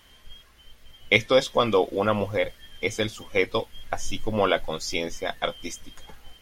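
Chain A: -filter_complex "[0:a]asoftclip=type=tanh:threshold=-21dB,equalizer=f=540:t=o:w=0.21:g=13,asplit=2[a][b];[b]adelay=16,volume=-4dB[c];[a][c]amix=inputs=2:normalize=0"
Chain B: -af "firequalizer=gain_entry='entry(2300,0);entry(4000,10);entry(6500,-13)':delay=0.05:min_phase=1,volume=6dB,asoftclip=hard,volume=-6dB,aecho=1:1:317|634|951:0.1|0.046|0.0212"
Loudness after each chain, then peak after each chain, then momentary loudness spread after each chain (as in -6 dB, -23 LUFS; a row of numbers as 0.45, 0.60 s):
-24.0, -24.5 LUFS; -8.0, -6.0 dBFS; 11, 14 LU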